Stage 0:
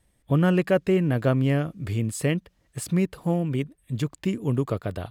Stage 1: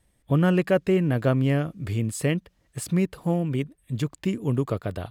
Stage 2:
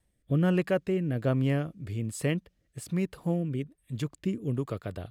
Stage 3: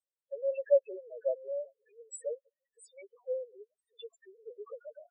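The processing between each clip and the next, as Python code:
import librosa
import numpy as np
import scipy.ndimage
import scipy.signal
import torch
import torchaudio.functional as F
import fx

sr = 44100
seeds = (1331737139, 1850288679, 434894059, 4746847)

y1 = x
y2 = fx.rotary(y1, sr, hz=1.2)
y2 = F.gain(torch.from_numpy(y2), -4.0).numpy()
y3 = scipy.signal.sosfilt(scipy.signal.butter(12, 440.0, 'highpass', fs=sr, output='sos'), y2)
y3 = fx.spec_topn(y3, sr, count=2)
y3 = fx.band_widen(y3, sr, depth_pct=40)
y3 = F.gain(torch.from_numpy(y3), 3.0).numpy()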